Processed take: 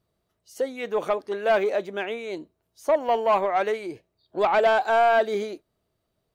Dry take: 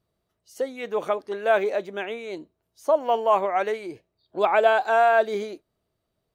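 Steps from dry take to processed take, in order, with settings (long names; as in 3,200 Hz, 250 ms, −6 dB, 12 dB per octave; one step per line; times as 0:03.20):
soft clipping −14.5 dBFS, distortion −16 dB
level +1.5 dB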